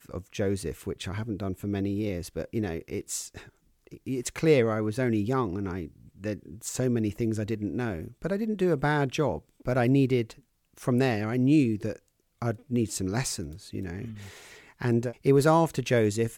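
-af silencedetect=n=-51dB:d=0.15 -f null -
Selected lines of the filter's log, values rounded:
silence_start: 3.49
silence_end: 3.87 | silence_duration: 0.38
silence_start: 10.40
silence_end: 10.74 | silence_duration: 0.34
silence_start: 12.08
silence_end: 12.42 | silence_duration: 0.34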